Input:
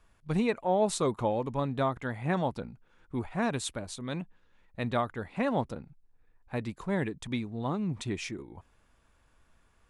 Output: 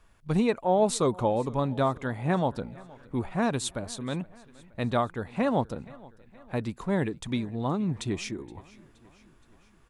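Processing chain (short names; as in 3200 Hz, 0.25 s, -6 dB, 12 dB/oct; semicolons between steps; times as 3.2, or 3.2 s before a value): on a send: feedback echo 0.471 s, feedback 56%, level -23 dB; on the sum: dynamic EQ 2100 Hz, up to -4 dB, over -51 dBFS, Q 1.6; gain +3.5 dB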